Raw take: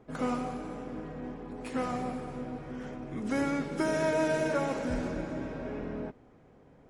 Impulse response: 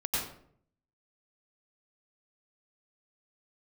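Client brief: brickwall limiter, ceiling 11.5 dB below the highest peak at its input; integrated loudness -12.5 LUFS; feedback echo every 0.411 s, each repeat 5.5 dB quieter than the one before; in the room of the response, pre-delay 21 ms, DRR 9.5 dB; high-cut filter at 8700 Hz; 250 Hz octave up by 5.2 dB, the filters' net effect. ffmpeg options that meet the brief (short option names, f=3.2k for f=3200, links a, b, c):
-filter_complex "[0:a]lowpass=8.7k,equalizer=f=250:t=o:g=6,alimiter=level_in=3dB:limit=-24dB:level=0:latency=1,volume=-3dB,aecho=1:1:411|822|1233|1644|2055|2466|2877:0.531|0.281|0.149|0.079|0.0419|0.0222|0.0118,asplit=2[a][b];[1:a]atrim=start_sample=2205,adelay=21[c];[b][c]afir=irnorm=-1:irlink=0,volume=-16.5dB[d];[a][d]amix=inputs=2:normalize=0,volume=20.5dB"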